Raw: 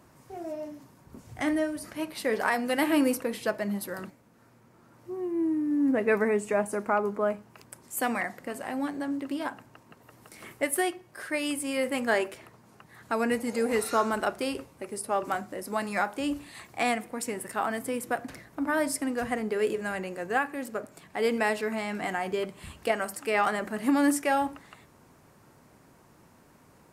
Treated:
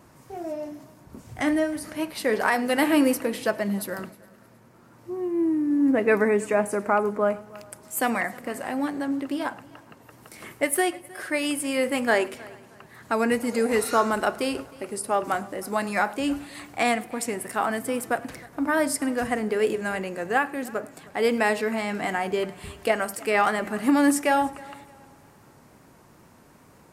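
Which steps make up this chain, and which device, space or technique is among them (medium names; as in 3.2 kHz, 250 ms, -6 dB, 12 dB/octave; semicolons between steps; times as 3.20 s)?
multi-head tape echo (multi-head delay 104 ms, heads first and third, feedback 46%, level -23 dB; wow and flutter 23 cents); trim +4 dB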